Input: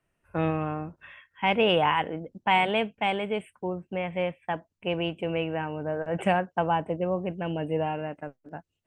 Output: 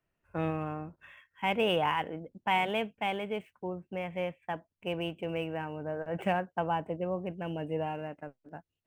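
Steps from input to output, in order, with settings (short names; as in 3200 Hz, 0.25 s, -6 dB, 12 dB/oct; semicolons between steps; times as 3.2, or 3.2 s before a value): median filter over 5 samples; gain -5.5 dB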